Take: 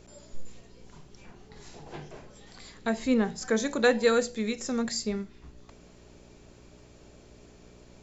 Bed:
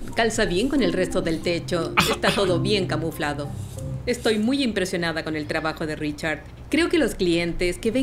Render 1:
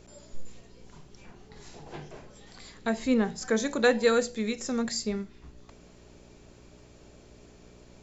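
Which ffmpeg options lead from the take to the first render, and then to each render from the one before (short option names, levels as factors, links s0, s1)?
-af anull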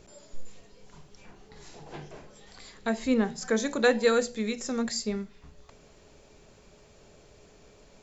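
-af "bandreject=f=60:t=h:w=4,bandreject=f=120:t=h:w=4,bandreject=f=180:t=h:w=4,bandreject=f=240:t=h:w=4,bandreject=f=300:t=h:w=4,bandreject=f=360:t=h:w=4"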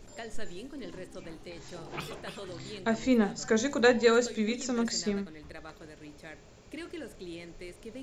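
-filter_complex "[1:a]volume=0.0841[s0];[0:a][s0]amix=inputs=2:normalize=0"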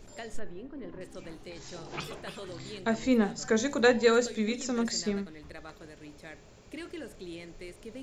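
-filter_complex "[0:a]asettb=1/sr,asplit=3[s0][s1][s2];[s0]atrim=end=0.394[s3];[s1]atrim=start=0.39:end=1.01,asetpts=PTS-STARTPTS,afade=t=in:d=0.004:c=qsin,afade=t=out:st=0.616:d=0.004:c=qsin,lowpass=1600[s4];[s2]atrim=start=1.006[s5];[s3][s4]acrossfade=d=0.004:c1=hsin:c2=qsin[s6];[s6][s5]acrossfade=d=0.004:c1=qsin:c2=hsin,asettb=1/sr,asplit=3[s7][s8][s9];[s7]atrim=end=1.554[s10];[s8]atrim=start=1.55:end=2.04,asetpts=PTS-STARTPTS,afade=t=in:d=0.004:c=qsin,afade=t=out:st=0.486:d=0.004:c=qsin,lowpass=f=6300:t=q:w=1.8[s11];[s9]atrim=start=2.036[s12];[s10][s11]acrossfade=d=0.004:c1=hsin:c2=qsin[s13];[s13][s12]acrossfade=d=0.004:c1=qsin:c2=hsin"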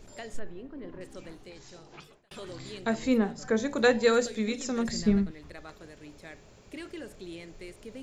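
-filter_complex "[0:a]asettb=1/sr,asplit=3[s0][s1][s2];[s0]atrim=end=3.184[s3];[s1]atrim=start=3.18:end=3.76,asetpts=PTS-STARTPTS,afade=t=in:d=0.004:c=qsin,afade=t=out:st=0.576:d=0.004:c=qsin,highshelf=f=2700:g=-8.5[s4];[s2]atrim=start=3.756[s5];[s3][s4]acrossfade=d=0.004:c1=hsin:c2=qsin[s6];[s6][s5]acrossfade=d=0.004:c1=qsin:c2=hsin,asettb=1/sr,asplit=3[s7][s8][s9];[s7]atrim=end=4.884[s10];[s8]atrim=start=4.88:end=5.31,asetpts=PTS-STARTPTS,afade=t=in:d=0.004:c=qsin,afade=t=out:st=0.426:d=0.004:c=qsin,bass=f=250:g=14,treble=f=4000:g=-5[s11];[s9]atrim=start=5.306[s12];[s10][s11]acrossfade=d=0.004:c1=hsin:c2=qsin[s13];[s13][s12]acrossfade=d=0.004:c1=qsin:c2=hsin,asplit=2[s14][s15];[s14]atrim=end=2.31,asetpts=PTS-STARTPTS,afade=t=out:st=1.14:d=1.17[s16];[s15]atrim=start=2.31,asetpts=PTS-STARTPTS,afade=t=in:d=0.004:c=hsin[s17];[s16][s17]concat=n=2:v=0:a=1"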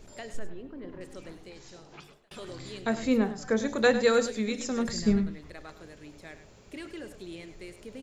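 -af "aecho=1:1:102:0.237"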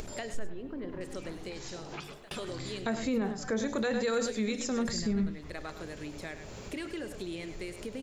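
-af "alimiter=limit=0.0794:level=0:latency=1:release=34,acompressor=mode=upward:threshold=0.0251:ratio=2.5"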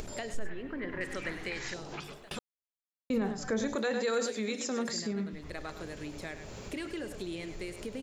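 -filter_complex "[0:a]asettb=1/sr,asplit=3[s0][s1][s2];[s0]atrim=end=0.454[s3];[s1]atrim=start=0.45:end=1.74,asetpts=PTS-STARTPTS,afade=t=in:d=0.004:c=qsin,afade=t=out:st=1.286:d=0.004:c=qsin,equalizer=f=1900:t=o:w=1:g=15[s4];[s2]atrim=start=1.736[s5];[s3][s4]acrossfade=d=0.004:c1=hsin:c2=qsin[s6];[s6][s5]acrossfade=d=0.004:c1=qsin:c2=hsin,asettb=1/sr,asplit=3[s7][s8][s9];[s7]atrim=end=3.754[s10];[s8]atrim=start=3.75:end=5.33,asetpts=PTS-STARTPTS,afade=t=in:d=0.004:c=qsin,afade=t=out:st=1.576:d=0.004:c=qsin,highpass=250[s11];[s9]atrim=start=5.326[s12];[s10][s11]acrossfade=d=0.004:c1=hsin:c2=qsin[s13];[s13][s12]acrossfade=d=0.004:c1=qsin:c2=hsin,asplit=3[s14][s15][s16];[s14]atrim=end=2.39,asetpts=PTS-STARTPTS,afade=t=out:st=2.386:d=0.004:c=hsin[s17];[s15]atrim=start=2.39:end=3.1,asetpts=PTS-STARTPTS,volume=0[s18];[s16]atrim=start=3.1,asetpts=PTS-STARTPTS,afade=t=in:d=0.004:c=hsin[s19];[s17][s18][s19]concat=n=3:v=0:a=1"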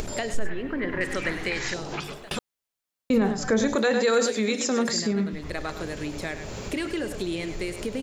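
-af "volume=2.82"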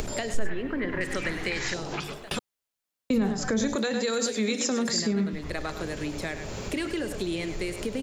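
-filter_complex "[0:a]acrossover=split=250|3000[s0][s1][s2];[s1]acompressor=threshold=0.0398:ratio=6[s3];[s0][s3][s2]amix=inputs=3:normalize=0"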